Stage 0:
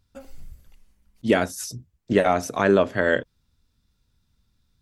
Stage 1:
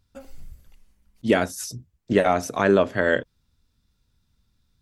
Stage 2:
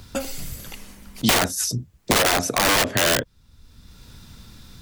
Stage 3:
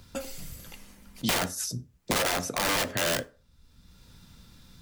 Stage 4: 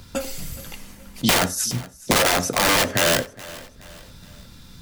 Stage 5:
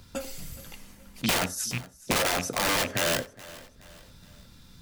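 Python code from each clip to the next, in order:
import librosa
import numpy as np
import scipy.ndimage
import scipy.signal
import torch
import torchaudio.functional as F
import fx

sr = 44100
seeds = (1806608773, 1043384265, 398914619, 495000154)

y1 = x
y2 = (np.mod(10.0 ** (18.0 / 20.0) * y1 + 1.0, 2.0) - 1.0) / 10.0 ** (18.0 / 20.0)
y2 = fx.band_squash(y2, sr, depth_pct=70)
y2 = y2 * librosa.db_to_amplitude(6.0)
y3 = fx.rev_fdn(y2, sr, rt60_s=0.37, lf_ratio=0.8, hf_ratio=0.65, size_ms=34.0, drr_db=10.0)
y3 = y3 * librosa.db_to_amplitude(-8.5)
y4 = fx.echo_feedback(y3, sr, ms=421, feedback_pct=44, wet_db=-19.5)
y4 = y4 * librosa.db_to_amplitude(8.5)
y5 = fx.rattle_buzz(y4, sr, strikes_db=-24.0, level_db=-12.0)
y5 = y5 * librosa.db_to_amplitude(-7.5)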